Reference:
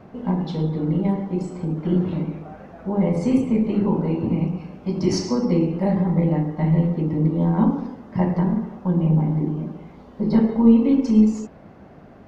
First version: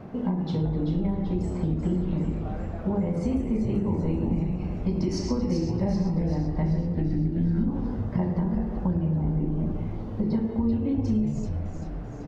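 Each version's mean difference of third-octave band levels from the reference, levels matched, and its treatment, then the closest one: 4.5 dB: spectral gain 6.95–7.68, 420–1300 Hz -17 dB; low shelf 390 Hz +5 dB; compressor, threshold -24 dBFS, peak gain reduction 17 dB; on a send: frequency-shifting echo 0.386 s, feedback 59%, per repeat -130 Hz, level -6.5 dB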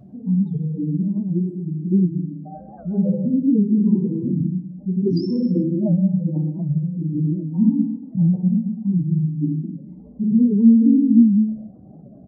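10.0 dB: spectral contrast raised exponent 3.1; on a send: echo 0.124 s -15 dB; on the sum: non-linear reverb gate 0.35 s falling, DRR 0.5 dB; record warp 78 rpm, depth 160 cents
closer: first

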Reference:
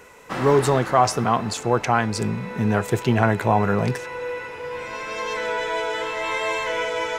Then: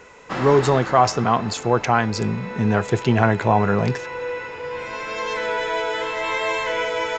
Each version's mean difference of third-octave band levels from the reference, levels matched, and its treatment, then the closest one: 2.0 dB: notch 5900 Hz, Q 25; downsampling 16000 Hz; gain +1.5 dB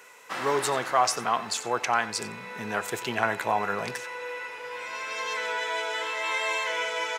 6.0 dB: HPF 1300 Hz 6 dB/oct; on a send: echo 91 ms -17 dB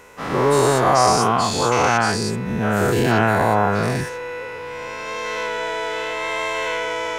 4.0 dB: spectral dilation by 0.24 s; notch 7700 Hz, Q 21; gain -3.5 dB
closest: first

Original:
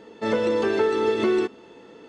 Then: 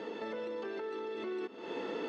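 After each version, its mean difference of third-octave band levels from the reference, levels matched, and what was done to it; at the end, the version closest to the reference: 8.5 dB: three-band isolator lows -17 dB, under 200 Hz, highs -17 dB, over 5500 Hz; compressor 10:1, threshold -36 dBFS, peak gain reduction 18 dB; limiter -37 dBFS, peak gain reduction 9.5 dB; vocal rider 0.5 s; gain +5 dB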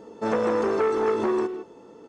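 3.0 dB: band shelf 2600 Hz -10 dB; vocal rider 2 s; speakerphone echo 0.16 s, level -9 dB; core saturation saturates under 850 Hz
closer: second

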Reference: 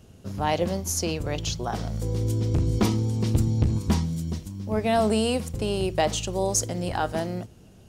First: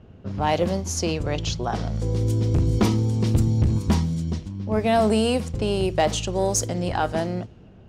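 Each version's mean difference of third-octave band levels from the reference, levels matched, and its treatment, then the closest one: 2.0 dB: low-pass opened by the level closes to 2100 Hz, open at -20.5 dBFS; high shelf 5800 Hz -4.5 dB; soft clip -11.5 dBFS, distortion -24 dB; gain +3.5 dB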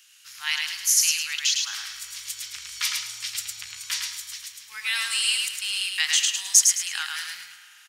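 21.0 dB: inverse Chebyshev high-pass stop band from 670 Hz, stop band 50 dB; on a send: feedback echo 0.107 s, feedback 32%, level -3.5 dB; on the sum: spring tank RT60 3.9 s, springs 41 ms, chirp 60 ms, DRR 13.5 dB; gain +9 dB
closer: first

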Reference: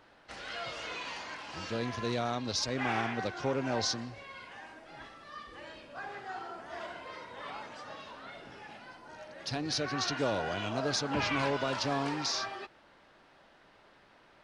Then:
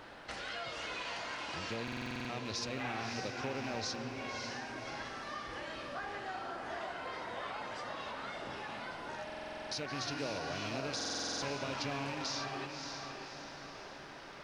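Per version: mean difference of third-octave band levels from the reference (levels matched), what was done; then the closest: 8.0 dB: rattling part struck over -39 dBFS, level -29 dBFS; compressor 3:1, threshold -52 dBFS, peak gain reduction 18.5 dB; diffused feedback echo 0.583 s, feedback 49%, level -5 dB; stuck buffer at 1.83/9.25/10.96, samples 2048, times 9; gain +9 dB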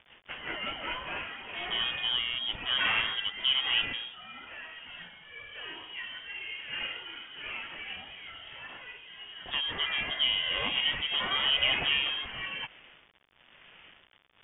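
11.0 dB: HPF 260 Hz 12 dB/oct; rotary speaker horn 5.5 Hz, later 1 Hz, at 0.61; bit-crush 10-bit; inverted band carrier 3500 Hz; gain +7 dB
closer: first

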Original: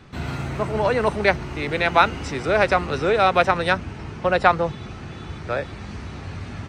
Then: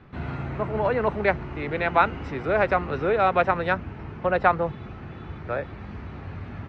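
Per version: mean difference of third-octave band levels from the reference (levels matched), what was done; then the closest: 3.5 dB: LPF 2200 Hz 12 dB/oct; gain -3 dB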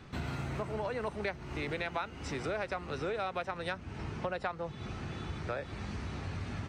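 5.0 dB: compressor 6:1, threshold -29 dBFS, peak gain reduction 18 dB; gain -4.5 dB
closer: first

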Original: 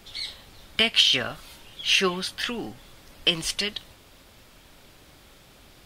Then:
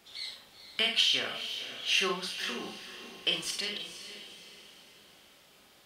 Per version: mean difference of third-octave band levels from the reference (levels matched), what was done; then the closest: 5.0 dB: HPF 310 Hz 6 dB/oct; on a send: diffused feedback echo 0.483 s, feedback 42%, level -11 dB; on the sum: Schroeder reverb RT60 0.31 s, combs from 30 ms, DRR 2.5 dB; gain -8 dB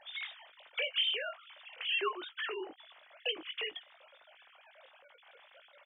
13.0 dB: sine-wave speech; compressor 2:1, threshold -42 dBFS, peak gain reduction 15 dB; doubler 19 ms -8.5 dB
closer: first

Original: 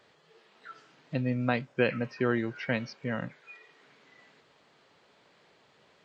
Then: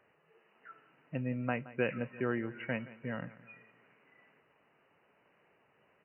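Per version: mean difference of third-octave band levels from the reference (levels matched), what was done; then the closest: 3.5 dB: brick-wall FIR low-pass 3000 Hz; on a send: feedback echo 0.172 s, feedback 48%, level -18 dB; on the sum: gain -6 dB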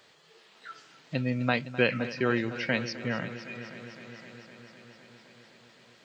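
6.5 dB: high shelf 2700 Hz +10.5 dB; multi-head echo 0.256 s, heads first and second, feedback 68%, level -17 dB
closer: first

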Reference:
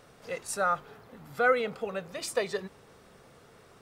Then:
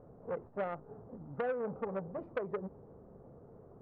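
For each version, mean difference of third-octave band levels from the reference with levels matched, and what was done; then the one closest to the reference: 10.0 dB: Bessel low-pass 560 Hz, order 4; compressor 20:1, threshold -33 dBFS, peak gain reduction 11 dB; core saturation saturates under 950 Hz; gain +4 dB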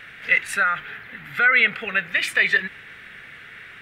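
7.5 dB: ten-band EQ 500 Hz -6 dB, 1000 Hz -3 dB, 2000 Hz +8 dB, 4000 Hz -7 dB, 8000 Hz -3 dB; limiter -25 dBFS, peak gain reduction 11 dB; band shelf 2400 Hz +16 dB; gain +4.5 dB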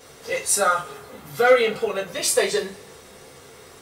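4.5 dB: in parallel at -4 dB: soft clip -22.5 dBFS, distortion -12 dB; on the sum: high shelf 3100 Hz +10.5 dB; two-slope reverb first 0.24 s, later 1.6 s, from -27 dB, DRR -8.5 dB; gain -5 dB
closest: third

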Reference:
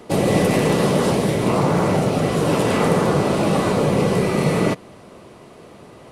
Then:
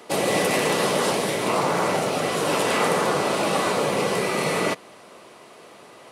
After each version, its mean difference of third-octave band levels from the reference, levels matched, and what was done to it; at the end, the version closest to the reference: 5.5 dB: HPF 880 Hz 6 dB/oct; gain +2.5 dB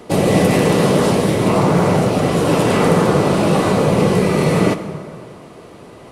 1.0 dB: plate-style reverb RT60 2.4 s, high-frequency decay 0.55×, DRR 9.5 dB; gain +3 dB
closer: second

